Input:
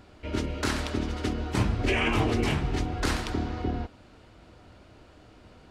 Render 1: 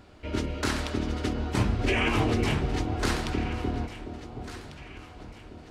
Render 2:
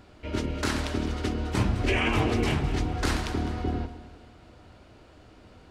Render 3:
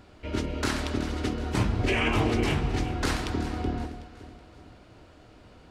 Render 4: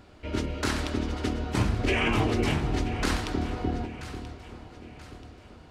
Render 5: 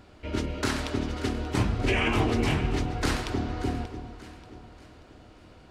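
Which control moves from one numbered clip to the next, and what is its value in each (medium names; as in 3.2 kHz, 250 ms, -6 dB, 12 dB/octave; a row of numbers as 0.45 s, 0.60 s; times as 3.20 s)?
echo whose repeats swap between lows and highs, time: 723 ms, 104 ms, 187 ms, 491 ms, 292 ms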